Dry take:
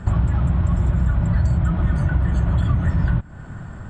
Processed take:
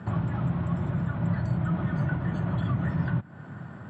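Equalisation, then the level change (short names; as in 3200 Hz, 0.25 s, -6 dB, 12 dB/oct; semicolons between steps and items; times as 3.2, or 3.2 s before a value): HPF 120 Hz 24 dB/oct; air absorption 140 m; -3.0 dB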